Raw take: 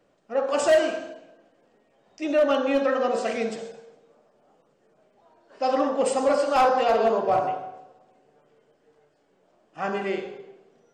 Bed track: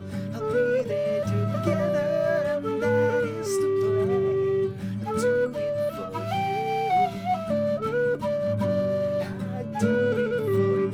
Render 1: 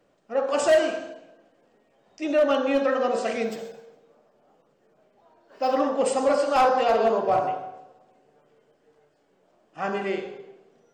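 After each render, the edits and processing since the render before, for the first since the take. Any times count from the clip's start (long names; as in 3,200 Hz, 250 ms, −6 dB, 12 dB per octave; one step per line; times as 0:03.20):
0:03.44–0:05.80: linearly interpolated sample-rate reduction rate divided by 2×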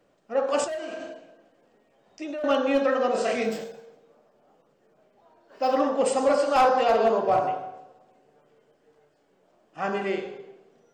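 0:00.64–0:02.44: downward compressor 12 to 1, threshold −30 dBFS
0:03.12–0:03.64: double-tracking delay 29 ms −2.5 dB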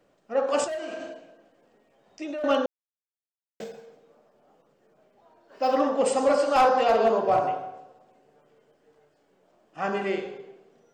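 0:02.66–0:03.60: silence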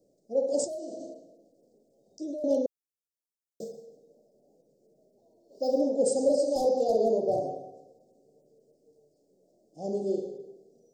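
inverse Chebyshev band-stop filter 1,200–2,500 Hz, stop band 60 dB
low-shelf EQ 100 Hz −7.5 dB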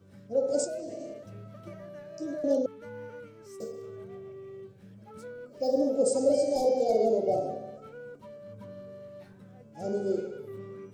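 mix in bed track −20.5 dB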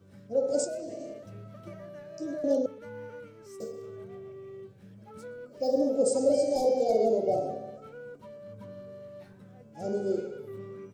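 single-tap delay 123 ms −23.5 dB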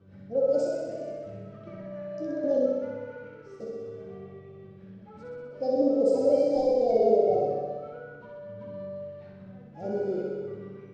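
high-frequency loss of the air 210 metres
flutter between parallel walls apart 10.8 metres, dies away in 1.3 s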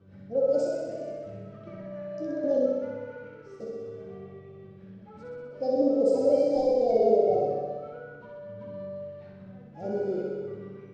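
no processing that can be heard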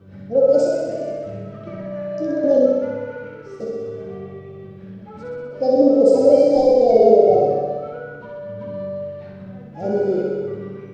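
level +10 dB
brickwall limiter −1 dBFS, peak gain reduction 1 dB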